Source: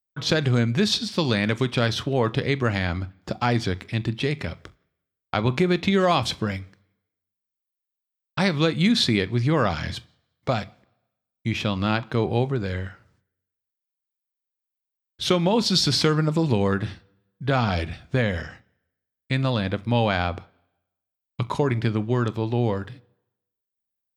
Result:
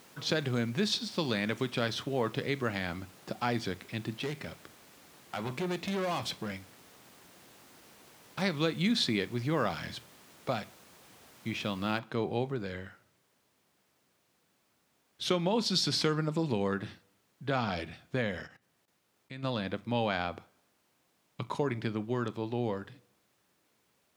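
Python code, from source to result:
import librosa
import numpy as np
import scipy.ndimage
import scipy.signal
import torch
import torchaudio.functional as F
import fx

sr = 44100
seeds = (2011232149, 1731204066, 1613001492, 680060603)

y = fx.overload_stage(x, sr, gain_db=21.5, at=(4.19, 8.42))
y = fx.noise_floor_step(y, sr, seeds[0], at_s=11.99, before_db=-47, after_db=-63, tilt_db=3.0)
y = fx.level_steps(y, sr, step_db=16, at=(18.46, 19.42), fade=0.02)
y = scipy.signal.sosfilt(scipy.signal.butter(2, 150.0, 'highpass', fs=sr, output='sos'), y)
y = y * 10.0 ** (-8.0 / 20.0)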